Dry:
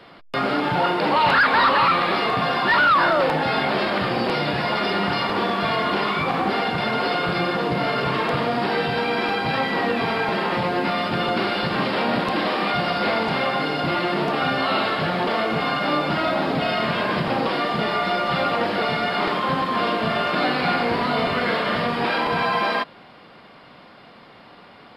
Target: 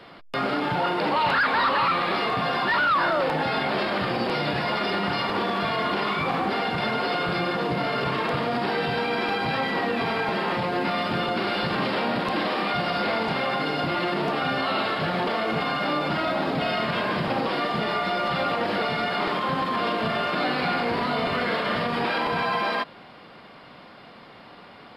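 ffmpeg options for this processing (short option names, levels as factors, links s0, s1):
-af "alimiter=limit=0.141:level=0:latency=1"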